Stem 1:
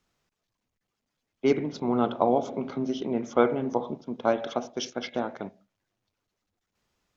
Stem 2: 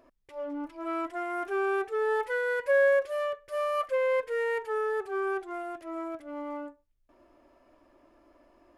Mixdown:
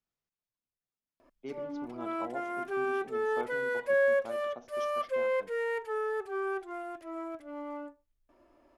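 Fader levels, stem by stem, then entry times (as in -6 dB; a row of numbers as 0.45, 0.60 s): -18.5, -3.0 dB; 0.00, 1.20 s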